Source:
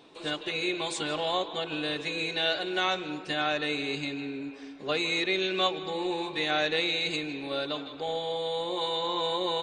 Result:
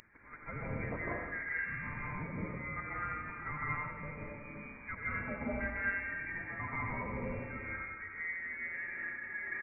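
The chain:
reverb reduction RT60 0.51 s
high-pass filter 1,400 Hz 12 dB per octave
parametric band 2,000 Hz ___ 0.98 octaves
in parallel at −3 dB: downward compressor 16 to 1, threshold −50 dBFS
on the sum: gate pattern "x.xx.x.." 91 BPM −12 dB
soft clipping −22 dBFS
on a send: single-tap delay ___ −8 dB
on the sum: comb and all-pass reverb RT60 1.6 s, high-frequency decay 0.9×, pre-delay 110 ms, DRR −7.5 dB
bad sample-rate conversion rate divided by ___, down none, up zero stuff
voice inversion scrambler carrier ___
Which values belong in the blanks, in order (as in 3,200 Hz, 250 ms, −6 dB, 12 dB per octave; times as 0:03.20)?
−12 dB, 86 ms, 4×, 2,700 Hz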